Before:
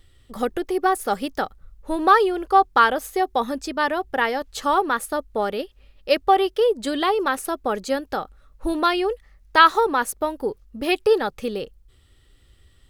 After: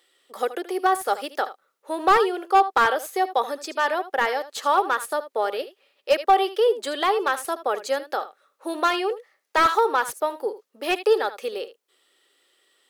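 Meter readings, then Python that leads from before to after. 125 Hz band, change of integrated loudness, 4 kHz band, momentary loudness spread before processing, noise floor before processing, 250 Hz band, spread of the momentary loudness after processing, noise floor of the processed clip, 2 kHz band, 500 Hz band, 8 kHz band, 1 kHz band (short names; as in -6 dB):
n/a, -1.5 dB, -2.0 dB, 13 LU, -56 dBFS, -6.5 dB, 13 LU, -73 dBFS, -2.0 dB, -1.0 dB, -1.0 dB, -1.0 dB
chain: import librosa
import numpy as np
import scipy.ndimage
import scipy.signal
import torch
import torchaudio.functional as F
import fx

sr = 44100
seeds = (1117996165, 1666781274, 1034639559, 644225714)

y = scipy.signal.sosfilt(scipy.signal.butter(4, 390.0, 'highpass', fs=sr, output='sos'), x)
y = y + 10.0 ** (-14.5 / 20.0) * np.pad(y, (int(77 * sr / 1000.0), 0))[:len(y)]
y = fx.slew_limit(y, sr, full_power_hz=270.0)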